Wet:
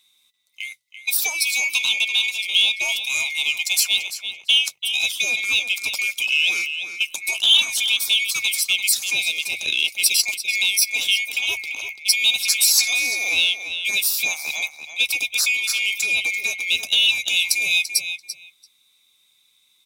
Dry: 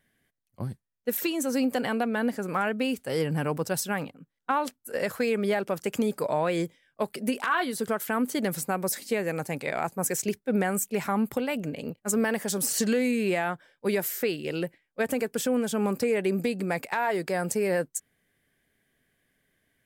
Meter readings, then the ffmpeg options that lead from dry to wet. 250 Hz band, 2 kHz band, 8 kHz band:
below −20 dB, +13.5 dB, +12.0 dB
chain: -filter_complex "[0:a]afftfilt=real='real(if(lt(b,920),b+92*(1-2*mod(floor(b/92),2)),b),0)':imag='imag(if(lt(b,920),b+92*(1-2*mod(floor(b/92),2)),b),0)':win_size=2048:overlap=0.75,highpass=frequency=110:poles=1,asplit=2[link_01][link_02];[link_02]adelay=12,volume=-14dB[link_03];[link_01][link_03]amix=inputs=2:normalize=0,asplit=2[link_04][link_05];[link_05]adelay=339,lowpass=frequency=4900:poles=1,volume=-9dB,asplit=2[link_06][link_07];[link_07]adelay=339,lowpass=frequency=4900:poles=1,volume=0.16[link_08];[link_04][link_06][link_08]amix=inputs=3:normalize=0,acrossover=split=560|7500[link_09][link_10][link_11];[link_10]acontrast=28[link_12];[link_09][link_12][link_11]amix=inputs=3:normalize=0,highshelf=frequency=4700:gain=-9,acontrast=35,bandreject=frequency=50:width_type=h:width=6,bandreject=frequency=100:width_type=h:width=6,bandreject=frequency=150:width_type=h:width=6,adynamicequalizer=threshold=0.00501:dfrequency=170:dqfactor=0.89:tfrequency=170:tqfactor=0.89:attack=5:release=100:ratio=0.375:range=2:mode=cutabove:tftype=bell,aexciter=amount=7.1:drive=7.8:freq=3000,volume=-10dB"

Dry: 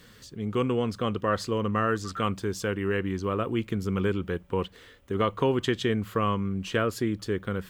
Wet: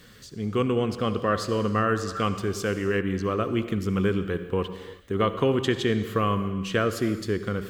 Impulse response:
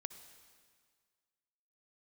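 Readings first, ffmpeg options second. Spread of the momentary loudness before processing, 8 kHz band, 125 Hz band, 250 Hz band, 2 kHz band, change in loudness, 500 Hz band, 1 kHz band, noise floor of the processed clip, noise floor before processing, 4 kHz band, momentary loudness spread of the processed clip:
5 LU, +2.5 dB, +2.0 dB, +2.5 dB, +2.0 dB, +2.0 dB, +2.5 dB, +1.5 dB, −47 dBFS, −53 dBFS, +2.0 dB, 5 LU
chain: -filter_complex "[0:a]bandreject=frequency=920:width=10[link_01];[1:a]atrim=start_sample=2205,afade=type=out:start_time=0.44:duration=0.01,atrim=end_sample=19845[link_02];[link_01][link_02]afir=irnorm=-1:irlink=0,volume=5.5dB"

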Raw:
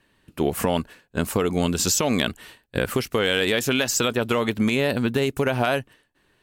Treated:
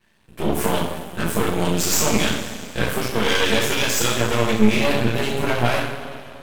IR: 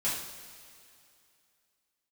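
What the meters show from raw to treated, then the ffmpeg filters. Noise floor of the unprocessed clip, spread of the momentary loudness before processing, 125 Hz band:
−65 dBFS, 7 LU, +3.0 dB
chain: -filter_complex "[1:a]atrim=start_sample=2205[link_01];[0:a][link_01]afir=irnorm=-1:irlink=0,aeval=exprs='max(val(0),0)':channel_layout=same"

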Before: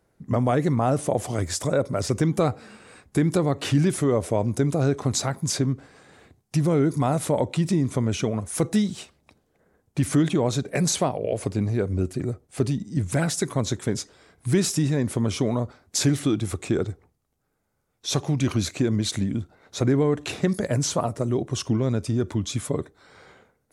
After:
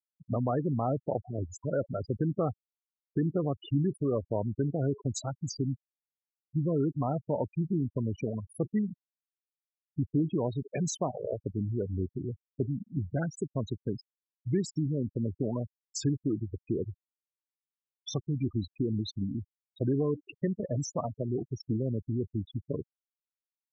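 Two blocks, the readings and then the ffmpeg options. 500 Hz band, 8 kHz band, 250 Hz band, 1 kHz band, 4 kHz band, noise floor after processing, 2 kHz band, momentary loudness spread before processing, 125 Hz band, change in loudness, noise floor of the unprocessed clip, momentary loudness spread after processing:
−8.0 dB, −14.5 dB, −7.5 dB, −9.5 dB, −15.5 dB, below −85 dBFS, −16.5 dB, 7 LU, −7.5 dB, −8.0 dB, −71 dBFS, 7 LU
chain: -af "afftfilt=real='re*gte(hypot(re,im),0.126)':imag='im*gte(hypot(re,im),0.126)':win_size=1024:overlap=0.75,volume=-7.5dB"

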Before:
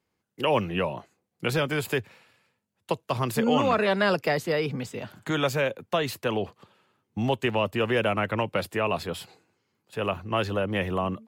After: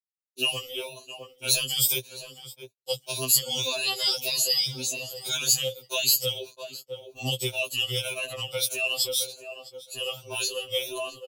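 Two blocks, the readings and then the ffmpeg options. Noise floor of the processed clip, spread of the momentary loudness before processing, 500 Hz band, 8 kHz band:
−66 dBFS, 10 LU, −8.0 dB, +18.5 dB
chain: -filter_complex "[0:a]afftfilt=real='re*pow(10,16/40*sin(2*PI*(1.5*log(max(b,1)*sr/1024/100)/log(2)-(1.8)*(pts-256)/sr)))':imag='im*pow(10,16/40*sin(2*PI*(1.5*log(max(b,1)*sr/1024/100)/log(2)-(1.8)*(pts-256)/sr)))':win_size=1024:overlap=0.75,equalizer=frequency=250:width_type=o:width=1:gain=-5,equalizer=frequency=500:width_type=o:width=1:gain=10,equalizer=frequency=2000:width_type=o:width=1:gain=-9,asplit=2[link_01][link_02];[link_02]adelay=662,lowpass=frequency=4200:poles=1,volume=-16dB,asplit=2[link_03][link_04];[link_04]adelay=662,lowpass=frequency=4200:poles=1,volume=0.24[link_05];[link_01][link_03][link_05]amix=inputs=3:normalize=0,adynamicequalizer=threshold=0.0398:dfrequency=470:dqfactor=2.9:tfrequency=470:tqfactor=2.9:attack=5:release=100:ratio=0.375:range=3:mode=boostabove:tftype=bell,acrossover=split=150|1500|2600[link_06][link_07][link_08][link_09];[link_07]acompressor=threshold=-25dB:ratio=8[link_10];[link_06][link_10][link_08][link_09]amix=inputs=4:normalize=0,agate=range=-48dB:threshold=-40dB:ratio=16:detection=peak,aexciter=amount=7.1:drive=9.1:freq=2700,afftfilt=real='re*2.45*eq(mod(b,6),0)':imag='im*2.45*eq(mod(b,6),0)':win_size=2048:overlap=0.75,volume=-6.5dB"

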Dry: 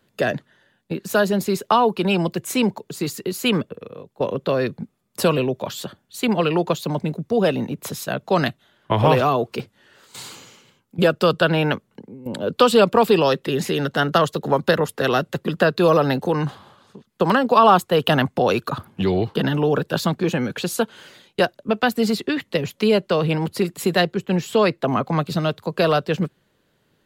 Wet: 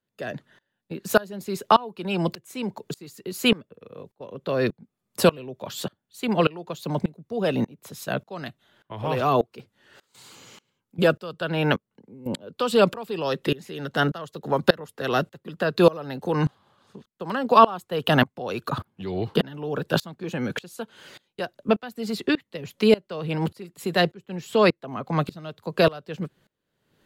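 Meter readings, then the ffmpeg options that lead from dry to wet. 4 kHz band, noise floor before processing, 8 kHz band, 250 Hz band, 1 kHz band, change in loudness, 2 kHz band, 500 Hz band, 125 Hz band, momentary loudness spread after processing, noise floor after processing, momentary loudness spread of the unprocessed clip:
−4.0 dB, −66 dBFS, −7.0 dB, −5.0 dB, −4.5 dB, −4.5 dB, −4.0 dB, −5.0 dB, −5.5 dB, 16 LU, −81 dBFS, 12 LU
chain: -af "aeval=exprs='val(0)*pow(10,-25*if(lt(mod(-1.7*n/s,1),2*abs(-1.7)/1000),1-mod(-1.7*n/s,1)/(2*abs(-1.7)/1000),(mod(-1.7*n/s,1)-2*abs(-1.7)/1000)/(1-2*abs(-1.7)/1000))/20)':channel_layout=same,volume=2.5dB"

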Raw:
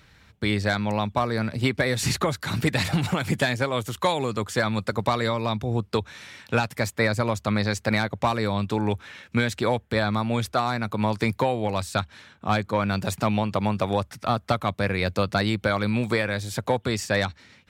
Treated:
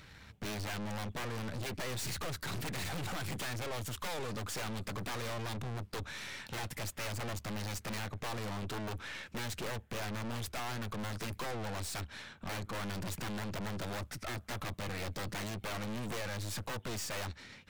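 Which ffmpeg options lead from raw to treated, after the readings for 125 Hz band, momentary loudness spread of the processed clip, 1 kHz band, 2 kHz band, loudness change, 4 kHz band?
−13.5 dB, 3 LU, −15.5 dB, −13.5 dB, −14.0 dB, −10.5 dB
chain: -af "aeval=exprs='(mod(5.62*val(0)+1,2)-1)/5.62':channel_layout=same,aeval=exprs='(tanh(112*val(0)+0.6)-tanh(0.6))/112':channel_layout=same,volume=3dB"

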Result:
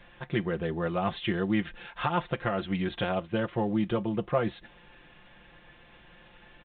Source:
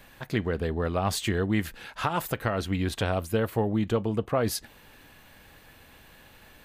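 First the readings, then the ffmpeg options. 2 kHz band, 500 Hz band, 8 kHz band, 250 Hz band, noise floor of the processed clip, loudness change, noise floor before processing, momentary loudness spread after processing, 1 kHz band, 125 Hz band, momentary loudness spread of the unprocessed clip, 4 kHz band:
−1.5 dB, −2.0 dB, below −40 dB, −0.5 dB, −56 dBFS, −2.0 dB, −54 dBFS, 4 LU, −1.0 dB, −4.0 dB, 4 LU, −3.5 dB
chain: -af "aecho=1:1:5.7:0.74,volume=-3dB" -ar 8000 -c:a pcm_alaw

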